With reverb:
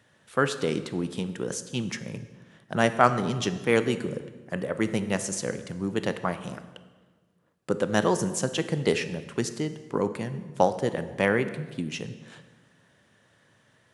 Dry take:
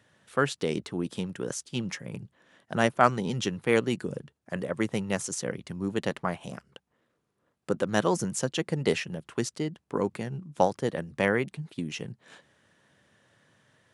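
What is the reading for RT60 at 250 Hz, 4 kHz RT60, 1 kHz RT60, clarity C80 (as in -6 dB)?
1.7 s, 1.1 s, 1.3 s, 13.5 dB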